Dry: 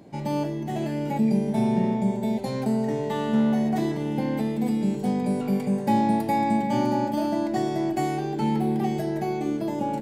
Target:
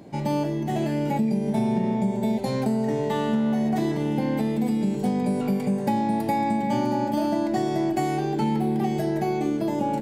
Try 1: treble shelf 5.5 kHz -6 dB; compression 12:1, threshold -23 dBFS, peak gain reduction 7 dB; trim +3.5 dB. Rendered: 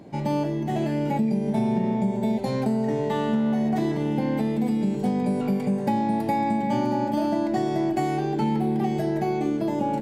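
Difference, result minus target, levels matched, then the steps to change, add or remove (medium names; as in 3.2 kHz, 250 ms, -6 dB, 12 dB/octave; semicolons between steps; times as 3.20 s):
8 kHz band -4.0 dB
remove: treble shelf 5.5 kHz -6 dB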